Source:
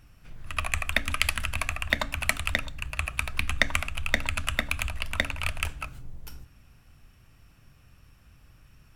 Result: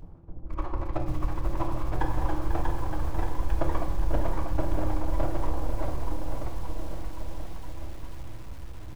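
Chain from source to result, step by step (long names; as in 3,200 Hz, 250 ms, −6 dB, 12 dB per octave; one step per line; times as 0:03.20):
elliptic low-pass filter 990 Hz, stop band 60 dB
parametric band 220 Hz −5.5 dB 0.82 octaves
in parallel at +2.5 dB: upward compression, threshold −34 dBFS
on the sum: half-wave rectification
pitch vibrato 6.7 Hz 51 cents
phase-vocoder pitch shift with formants kept −12 semitones
bouncing-ball delay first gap 640 ms, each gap 0.9×, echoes 5
on a send at −2 dB: convolution reverb RT60 1.0 s, pre-delay 3 ms
on the sum: feedback echo at a low word length 494 ms, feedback 55%, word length 7 bits, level −10 dB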